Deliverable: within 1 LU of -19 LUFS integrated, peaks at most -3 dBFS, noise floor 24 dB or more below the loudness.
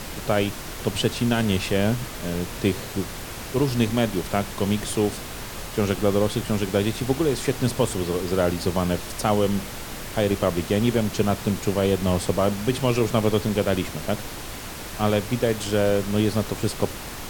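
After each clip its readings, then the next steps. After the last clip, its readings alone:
noise floor -35 dBFS; noise floor target -49 dBFS; loudness -24.5 LUFS; peak level -6.0 dBFS; loudness target -19.0 LUFS
-> noise print and reduce 14 dB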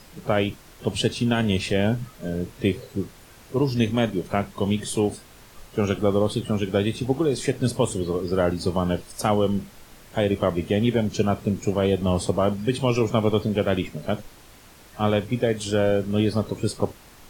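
noise floor -49 dBFS; loudness -24.5 LUFS; peak level -6.5 dBFS; loudness target -19.0 LUFS
-> trim +5.5 dB; peak limiter -3 dBFS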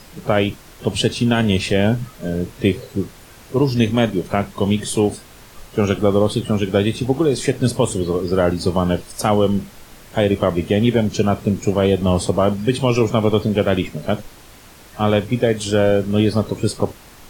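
loudness -19.0 LUFS; peak level -3.0 dBFS; noise floor -43 dBFS

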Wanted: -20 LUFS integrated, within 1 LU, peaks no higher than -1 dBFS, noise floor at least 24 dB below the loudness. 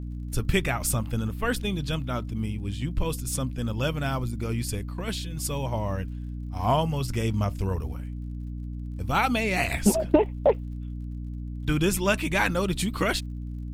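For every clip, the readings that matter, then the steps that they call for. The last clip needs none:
tick rate 44 per s; hum 60 Hz; highest harmonic 300 Hz; hum level -32 dBFS; loudness -27.5 LUFS; peak level -6.5 dBFS; loudness target -20.0 LUFS
-> de-click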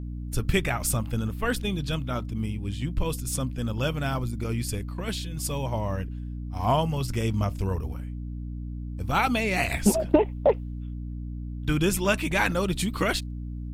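tick rate 0.22 per s; hum 60 Hz; highest harmonic 300 Hz; hum level -32 dBFS
-> de-hum 60 Hz, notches 5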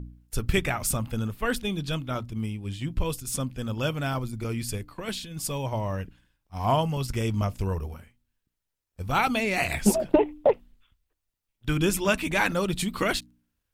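hum not found; loudness -27.5 LUFS; peak level -7.0 dBFS; loudness target -20.0 LUFS
-> trim +7.5 dB; peak limiter -1 dBFS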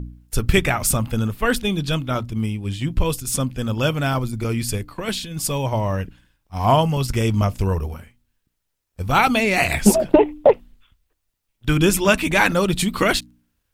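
loudness -20.5 LUFS; peak level -1.0 dBFS; noise floor -75 dBFS

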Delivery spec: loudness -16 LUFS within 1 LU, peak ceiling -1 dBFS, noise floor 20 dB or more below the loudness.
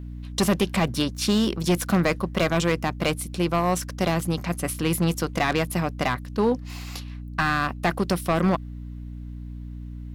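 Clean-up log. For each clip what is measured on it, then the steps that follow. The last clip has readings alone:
clipped samples 1.5%; clipping level -15.0 dBFS; hum 60 Hz; highest harmonic 300 Hz; hum level -34 dBFS; loudness -24.5 LUFS; peak level -15.0 dBFS; loudness target -16.0 LUFS
-> clip repair -15 dBFS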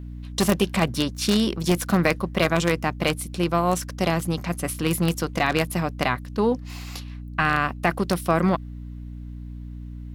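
clipped samples 0.0%; hum 60 Hz; highest harmonic 300 Hz; hum level -33 dBFS
-> de-hum 60 Hz, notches 5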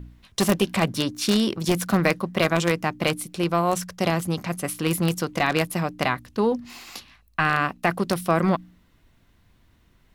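hum not found; loudness -24.0 LUFS; peak level -5.5 dBFS; loudness target -16.0 LUFS
-> trim +8 dB; peak limiter -1 dBFS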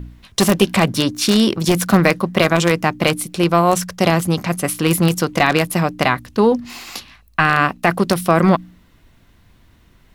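loudness -16.5 LUFS; peak level -1.0 dBFS; noise floor -53 dBFS

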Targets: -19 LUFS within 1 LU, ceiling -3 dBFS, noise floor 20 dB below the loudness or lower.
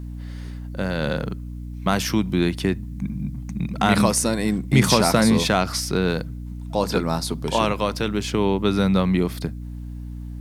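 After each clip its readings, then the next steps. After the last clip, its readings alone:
hum 60 Hz; highest harmonic 300 Hz; hum level -30 dBFS; loudness -22.0 LUFS; peak level -2.0 dBFS; loudness target -19.0 LUFS
-> hum notches 60/120/180/240/300 Hz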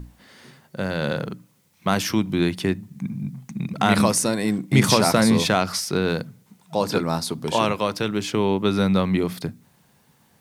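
hum not found; loudness -22.5 LUFS; peak level -2.5 dBFS; loudness target -19.0 LUFS
-> trim +3.5 dB; peak limiter -3 dBFS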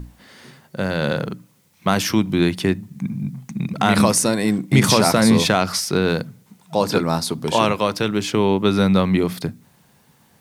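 loudness -19.5 LUFS; peak level -3.0 dBFS; noise floor -57 dBFS

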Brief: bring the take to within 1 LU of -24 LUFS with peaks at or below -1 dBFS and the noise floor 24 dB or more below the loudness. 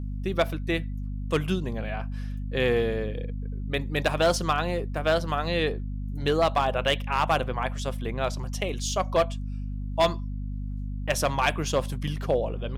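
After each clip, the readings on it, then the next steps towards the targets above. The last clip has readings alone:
clipped samples 0.4%; clipping level -15.0 dBFS; hum 50 Hz; highest harmonic 250 Hz; hum level -29 dBFS; loudness -27.5 LUFS; peak level -15.0 dBFS; loudness target -24.0 LUFS
-> clip repair -15 dBFS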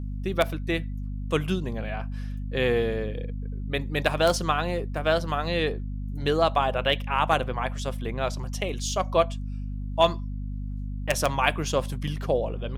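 clipped samples 0.0%; hum 50 Hz; highest harmonic 250 Hz; hum level -29 dBFS
-> de-hum 50 Hz, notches 5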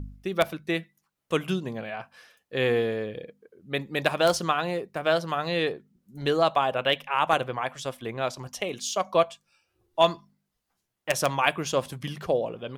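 hum not found; loudness -27.0 LUFS; peak level -5.5 dBFS; loudness target -24.0 LUFS
-> trim +3 dB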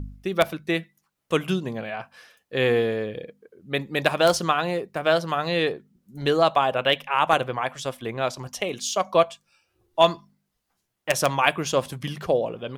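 loudness -24.0 LUFS; peak level -2.5 dBFS; noise floor -78 dBFS

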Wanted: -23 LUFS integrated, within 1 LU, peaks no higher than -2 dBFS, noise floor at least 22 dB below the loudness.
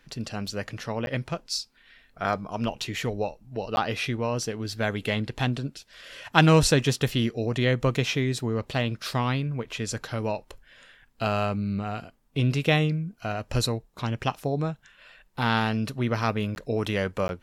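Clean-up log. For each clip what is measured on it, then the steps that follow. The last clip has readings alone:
dropouts 4; longest dropout 11 ms; loudness -27.0 LUFS; peak level -1.0 dBFS; loudness target -23.0 LUFS
-> interpolate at 1.06/3.76/16.55/17.28 s, 11 ms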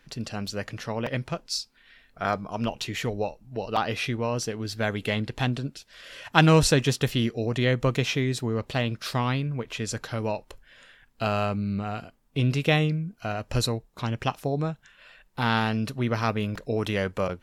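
dropouts 0; loudness -27.0 LUFS; peak level -1.0 dBFS; loudness target -23.0 LUFS
-> trim +4 dB; peak limiter -2 dBFS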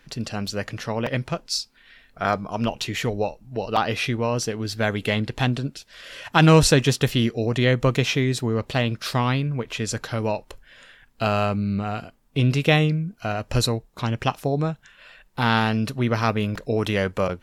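loudness -23.5 LUFS; peak level -2.0 dBFS; noise floor -58 dBFS

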